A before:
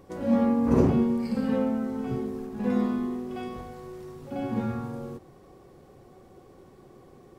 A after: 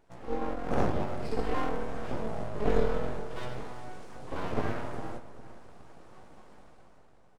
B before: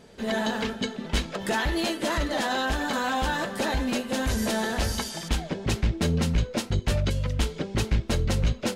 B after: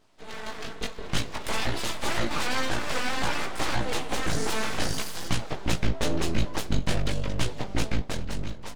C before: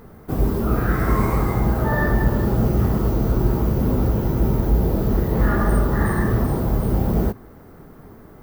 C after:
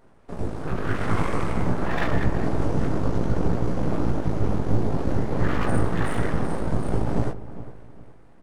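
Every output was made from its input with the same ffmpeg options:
-filter_complex "[0:a]aresample=22050,aresample=44100,asplit=2[a][b];[b]acompressor=threshold=-28dB:ratio=6,volume=-1dB[c];[a][c]amix=inputs=2:normalize=0,aeval=exprs='0.596*(cos(1*acos(clip(val(0)/0.596,-1,1)))-cos(1*PI/2))+0.0266*(cos(6*acos(clip(val(0)/0.596,-1,1)))-cos(6*PI/2))+0.0376*(cos(7*acos(clip(val(0)/0.596,-1,1)))-cos(7*PI/2))':c=same,flanger=delay=16.5:depth=3:speed=0.54,aeval=exprs='abs(val(0))':c=same,dynaudnorm=f=120:g=13:m=11.5dB,asplit=2[d][e];[e]adelay=406,lowpass=f=1.5k:p=1,volume=-14dB,asplit=2[f][g];[g]adelay=406,lowpass=f=1.5k:p=1,volume=0.33,asplit=2[h][i];[i]adelay=406,lowpass=f=1.5k:p=1,volume=0.33[j];[d][f][h][j]amix=inputs=4:normalize=0,volume=-7.5dB"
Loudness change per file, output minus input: -7.0, -3.0, -6.0 LU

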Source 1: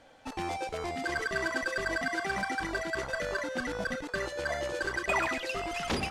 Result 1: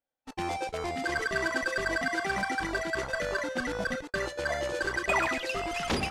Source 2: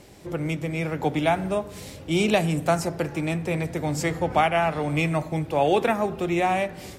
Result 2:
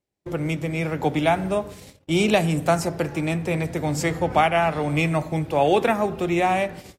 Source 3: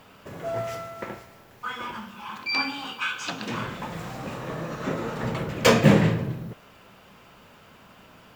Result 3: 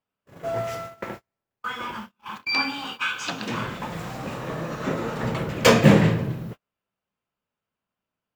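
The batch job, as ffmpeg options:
-af "agate=range=-38dB:threshold=-37dB:ratio=16:detection=peak,volume=2dB"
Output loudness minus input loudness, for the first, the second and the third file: +2.0, +2.0, +2.5 LU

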